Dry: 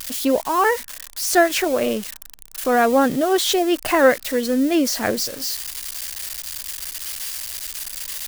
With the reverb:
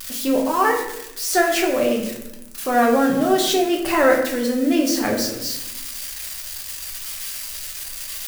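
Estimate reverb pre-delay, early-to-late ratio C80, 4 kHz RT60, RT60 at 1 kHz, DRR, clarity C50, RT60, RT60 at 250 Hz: 5 ms, 8.0 dB, 0.50 s, 0.80 s, −1.0 dB, 5.5 dB, 0.90 s, 1.3 s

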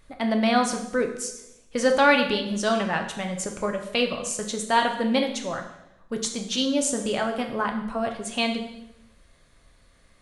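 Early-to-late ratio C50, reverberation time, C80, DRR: 8.0 dB, 0.85 s, 11.0 dB, 3.0 dB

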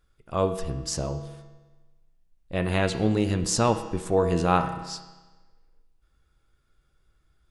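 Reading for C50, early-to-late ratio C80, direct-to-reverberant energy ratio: 9.5 dB, 11.0 dB, 6.5 dB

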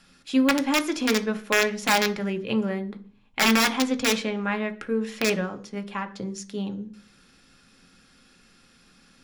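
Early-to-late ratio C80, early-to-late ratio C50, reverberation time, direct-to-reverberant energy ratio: 21.5 dB, 17.0 dB, 0.40 s, 7.0 dB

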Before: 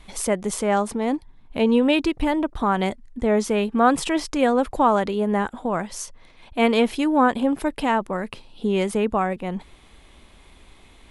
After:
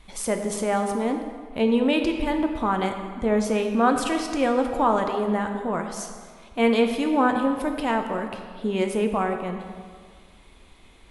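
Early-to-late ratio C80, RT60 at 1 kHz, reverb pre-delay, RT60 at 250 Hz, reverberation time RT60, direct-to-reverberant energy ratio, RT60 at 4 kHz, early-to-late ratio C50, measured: 7.5 dB, 1.8 s, 8 ms, 1.8 s, 1.9 s, 4.0 dB, 1.3 s, 6.5 dB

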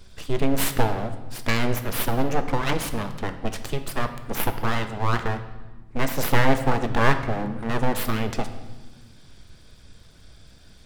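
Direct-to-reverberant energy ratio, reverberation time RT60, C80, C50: 8.0 dB, 1.2 s, 12.5 dB, 11.0 dB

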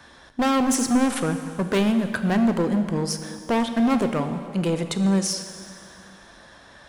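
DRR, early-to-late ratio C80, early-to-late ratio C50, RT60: 8.0 dB, 9.5 dB, 9.0 dB, 2.4 s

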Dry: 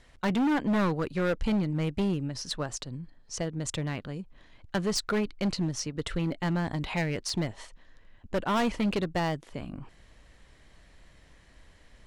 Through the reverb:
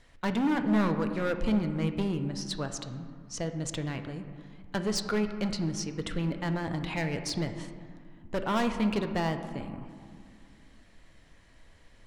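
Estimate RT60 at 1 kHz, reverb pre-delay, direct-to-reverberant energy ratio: 2.1 s, 4 ms, 7.0 dB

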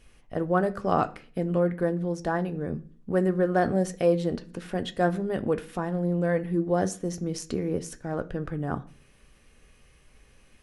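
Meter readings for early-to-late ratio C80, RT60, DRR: 23.0 dB, 0.45 s, 8.0 dB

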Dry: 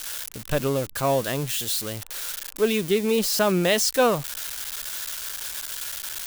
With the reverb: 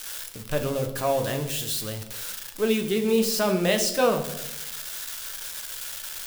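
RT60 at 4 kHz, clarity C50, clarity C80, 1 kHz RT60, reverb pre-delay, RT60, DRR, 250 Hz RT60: 0.75 s, 10.0 dB, 13.0 dB, 0.75 s, 9 ms, 0.90 s, 4.5 dB, 1.2 s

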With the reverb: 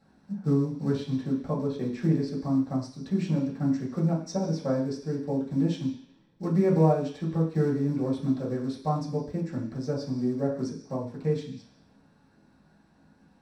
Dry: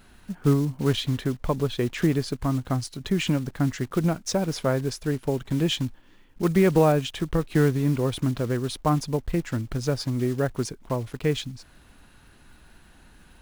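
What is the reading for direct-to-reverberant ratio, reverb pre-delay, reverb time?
−7.0 dB, 3 ms, 0.50 s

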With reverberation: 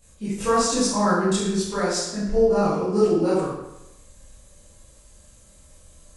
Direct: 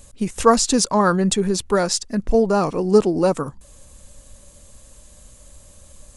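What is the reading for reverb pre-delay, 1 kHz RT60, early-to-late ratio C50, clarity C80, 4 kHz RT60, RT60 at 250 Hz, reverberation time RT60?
18 ms, 0.90 s, 0.0 dB, 3.5 dB, 0.80 s, 0.90 s, 0.90 s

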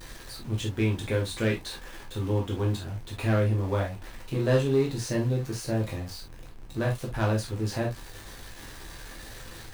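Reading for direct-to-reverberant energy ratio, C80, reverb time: −2.5 dB, 36.5 dB, non-exponential decay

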